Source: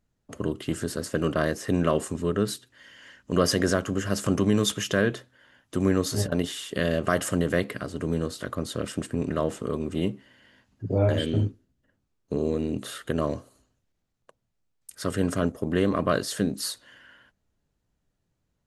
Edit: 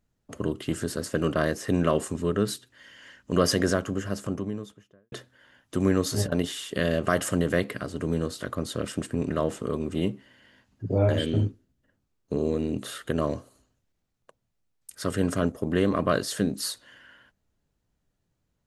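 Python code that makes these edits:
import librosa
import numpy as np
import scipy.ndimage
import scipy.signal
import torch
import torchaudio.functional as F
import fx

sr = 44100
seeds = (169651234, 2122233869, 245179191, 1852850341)

y = fx.studio_fade_out(x, sr, start_s=3.48, length_s=1.64)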